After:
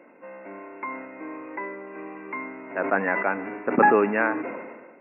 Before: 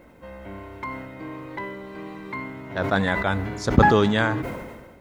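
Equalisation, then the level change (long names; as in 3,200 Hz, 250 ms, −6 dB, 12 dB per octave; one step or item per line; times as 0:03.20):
high-pass filter 250 Hz 24 dB per octave
linear-phase brick-wall low-pass 2,800 Hz
0.0 dB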